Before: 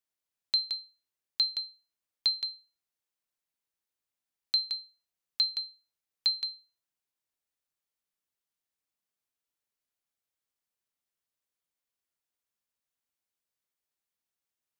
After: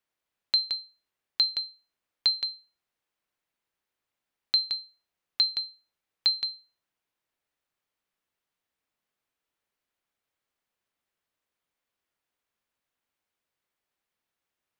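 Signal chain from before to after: tone controls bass -2 dB, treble -10 dB; trim +8.5 dB

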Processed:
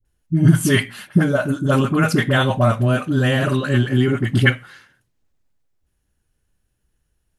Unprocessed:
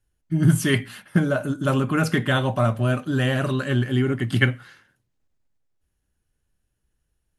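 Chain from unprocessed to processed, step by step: phase dispersion highs, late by 51 ms, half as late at 640 Hz; trim +4.5 dB

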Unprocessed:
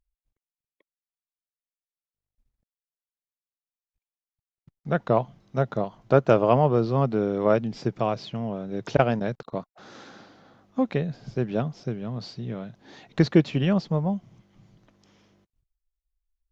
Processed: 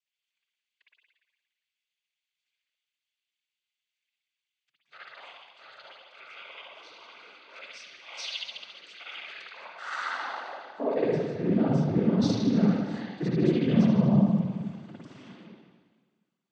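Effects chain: reverse; compression 12:1, threshold -35 dBFS, peak gain reduction 23.5 dB; reverse; high-pass sweep 2.7 kHz -> 200 Hz, 9.30–11.46 s; spring tank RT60 1.5 s, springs 53 ms, chirp 25 ms, DRR -8 dB; noise-vocoded speech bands 16; trim +4 dB

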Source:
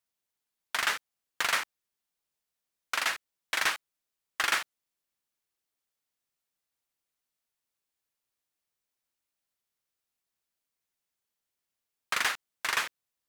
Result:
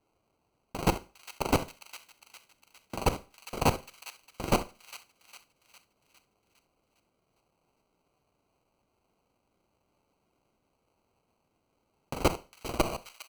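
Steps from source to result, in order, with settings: tape stop on the ending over 0.66 s; high-pass 540 Hz 12 dB/octave; treble shelf 2.5 kHz +10.5 dB; comb 1.8 ms, depth 80%; level held to a coarse grid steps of 20 dB; sample-and-hold 25×; valve stage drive 23 dB, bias 0.45; feedback echo behind a high-pass 406 ms, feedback 51%, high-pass 2 kHz, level -11 dB; Schroeder reverb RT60 0.33 s, combs from 33 ms, DRR 15.5 dB; trim +6 dB

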